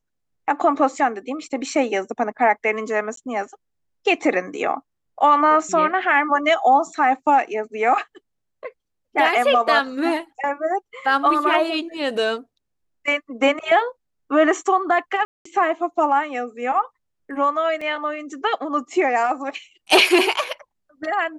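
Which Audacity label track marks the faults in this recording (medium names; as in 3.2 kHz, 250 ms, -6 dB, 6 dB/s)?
3.160000	3.170000	dropout 13 ms
15.250000	15.450000	dropout 204 ms
17.810000	17.810000	dropout 4.5 ms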